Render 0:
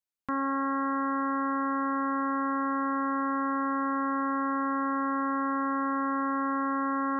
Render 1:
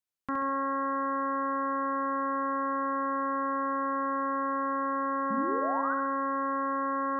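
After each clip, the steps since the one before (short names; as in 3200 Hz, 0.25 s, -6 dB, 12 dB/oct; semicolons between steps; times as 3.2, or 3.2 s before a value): painted sound rise, 5.3–5.94, 200–1600 Hz -33 dBFS; flutter echo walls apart 11.6 m, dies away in 0.66 s; gain -1.5 dB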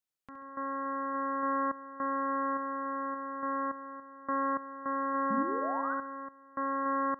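random-step tremolo 3.5 Hz, depth 95%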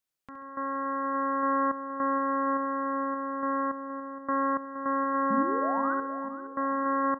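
feedback echo 0.469 s, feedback 58%, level -14 dB; gain +3.5 dB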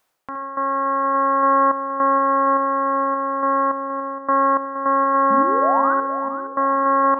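bell 820 Hz +13 dB 2.4 oct; reverse; upward compressor, threshold -20 dBFS; reverse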